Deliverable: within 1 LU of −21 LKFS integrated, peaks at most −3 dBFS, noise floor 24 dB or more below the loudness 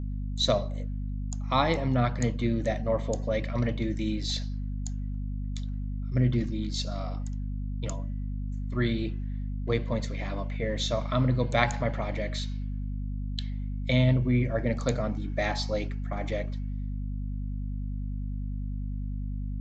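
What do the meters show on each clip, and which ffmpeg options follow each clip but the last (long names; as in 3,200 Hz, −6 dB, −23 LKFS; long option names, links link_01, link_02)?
mains hum 50 Hz; hum harmonics up to 250 Hz; level of the hum −30 dBFS; integrated loudness −30.5 LKFS; sample peak −7.5 dBFS; target loudness −21.0 LKFS
→ -af "bandreject=frequency=50:width_type=h:width=4,bandreject=frequency=100:width_type=h:width=4,bandreject=frequency=150:width_type=h:width=4,bandreject=frequency=200:width_type=h:width=4,bandreject=frequency=250:width_type=h:width=4"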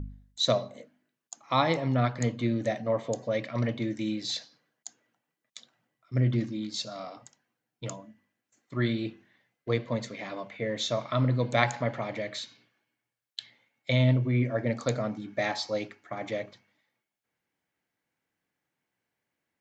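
mains hum none found; integrated loudness −30.0 LKFS; sample peak −7.0 dBFS; target loudness −21.0 LKFS
→ -af "volume=9dB,alimiter=limit=-3dB:level=0:latency=1"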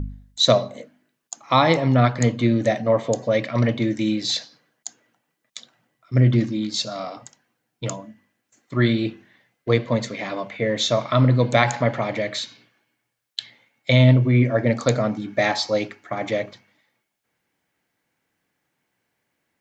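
integrated loudness −21.0 LKFS; sample peak −3.0 dBFS; background noise floor −77 dBFS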